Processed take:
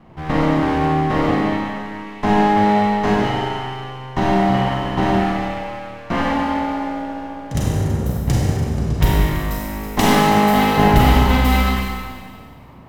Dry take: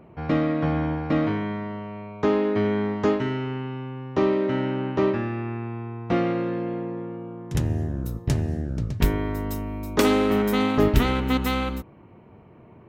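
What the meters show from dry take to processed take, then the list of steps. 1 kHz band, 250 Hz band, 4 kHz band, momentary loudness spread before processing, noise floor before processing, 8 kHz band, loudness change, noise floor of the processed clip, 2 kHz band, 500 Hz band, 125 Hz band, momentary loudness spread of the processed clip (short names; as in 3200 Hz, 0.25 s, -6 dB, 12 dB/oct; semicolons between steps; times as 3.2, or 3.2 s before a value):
+13.0 dB, +5.5 dB, +8.5 dB, 12 LU, -50 dBFS, +9.0 dB, +7.0 dB, -39 dBFS, +9.0 dB, +3.0 dB, +7.0 dB, 13 LU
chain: minimum comb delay 1 ms; Schroeder reverb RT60 1.8 s, combs from 32 ms, DRR -4 dB; gain +3.5 dB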